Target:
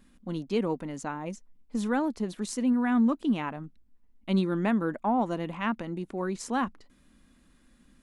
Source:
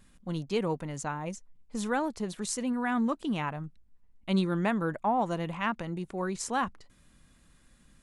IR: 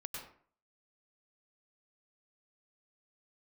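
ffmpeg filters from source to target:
-af "aeval=exprs='0.168*(cos(1*acos(clip(val(0)/0.168,-1,1)))-cos(1*PI/2))+0.00668*(cos(2*acos(clip(val(0)/0.168,-1,1)))-cos(2*PI/2))':c=same,equalizer=f=125:t=o:w=1:g=-8,equalizer=f=250:t=o:w=1:g=9,equalizer=f=8000:t=o:w=1:g=-4,volume=0.891"

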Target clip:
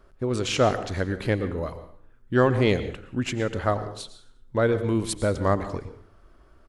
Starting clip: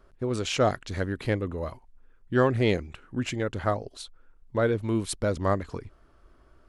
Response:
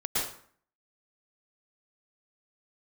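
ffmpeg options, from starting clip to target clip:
-filter_complex "[0:a]asplit=5[s0][s1][s2][s3][s4];[s1]adelay=89,afreqshift=-130,volume=0.0841[s5];[s2]adelay=178,afreqshift=-260,volume=0.0422[s6];[s3]adelay=267,afreqshift=-390,volume=0.0211[s7];[s4]adelay=356,afreqshift=-520,volume=0.0105[s8];[s0][s5][s6][s7][s8]amix=inputs=5:normalize=0,asplit=2[s9][s10];[1:a]atrim=start_sample=2205[s11];[s10][s11]afir=irnorm=-1:irlink=0,volume=0.112[s12];[s9][s12]amix=inputs=2:normalize=0,volume=1.19"

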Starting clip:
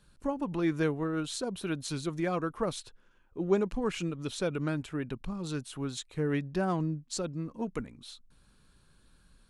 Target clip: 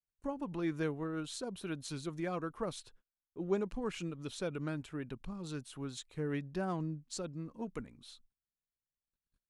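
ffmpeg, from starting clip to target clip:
-af "agate=range=0.0178:threshold=0.00178:ratio=16:detection=peak,volume=0.473"

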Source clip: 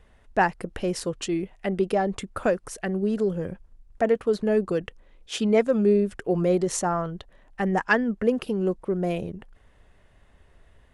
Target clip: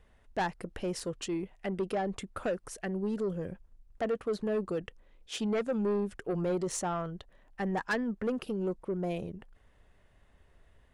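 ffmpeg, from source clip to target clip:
-af "asoftclip=type=tanh:threshold=0.112,volume=0.501"

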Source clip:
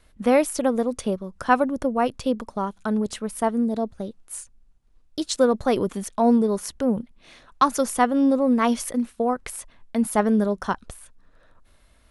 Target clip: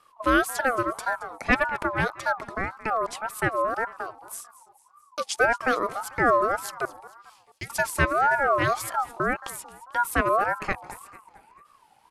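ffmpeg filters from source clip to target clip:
-filter_complex "[0:a]asplit=3[s0][s1][s2];[s0]afade=t=out:st=1.52:d=0.02[s3];[s1]aeval=exprs='0.596*(cos(1*acos(clip(val(0)/0.596,-1,1)))-cos(1*PI/2))+0.106*(cos(6*acos(clip(val(0)/0.596,-1,1)))-cos(6*PI/2))+0.0211*(cos(8*acos(clip(val(0)/0.596,-1,1)))-cos(8*PI/2))':c=same,afade=t=in:st=1.52:d=0.02,afade=t=out:st=2.05:d=0.02[s4];[s2]afade=t=in:st=2.05:d=0.02[s5];[s3][s4][s5]amix=inputs=3:normalize=0,asettb=1/sr,asplit=3[s6][s7][s8];[s6]atrim=end=6.854[s9];[s7]atrim=start=6.85:end=7.7,asetpts=PTS-STARTPTS,afade=t=in:d=0.004:c=qsin,afade=t=out:st=0.846:d=0.004:c=qsin,aderivative[s10];[s8]atrim=start=7.696[s11];[s9][s10]acrossfade=d=0.004:c1=hsin:c2=qsin[s12];[s12][s11]acrossfade=d=0.004:c1=qsin:c2=hsin,asplit=2[s13][s14];[s14]asplit=4[s15][s16][s17][s18];[s15]adelay=221,afreqshift=-60,volume=0.126[s19];[s16]adelay=442,afreqshift=-120,volume=0.0653[s20];[s17]adelay=663,afreqshift=-180,volume=0.0339[s21];[s18]adelay=884,afreqshift=-240,volume=0.0178[s22];[s19][s20][s21][s22]amix=inputs=4:normalize=0[s23];[s13][s23]amix=inputs=2:normalize=0,aeval=exprs='val(0)*sin(2*PI*1000*n/s+1000*0.2/1.8*sin(2*PI*1.8*n/s))':c=same"

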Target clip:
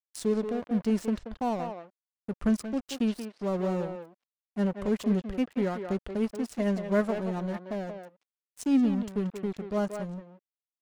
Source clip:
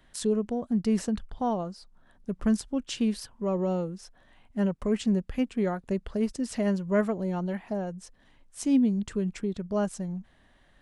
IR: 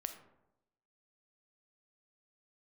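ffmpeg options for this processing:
-filter_complex "[0:a]aeval=exprs='sgn(val(0))*max(abs(val(0))-0.01,0)':c=same,asplit=2[s0][s1];[s1]adelay=180,highpass=300,lowpass=3400,asoftclip=type=hard:threshold=0.0631,volume=0.501[s2];[s0][s2]amix=inputs=2:normalize=0"

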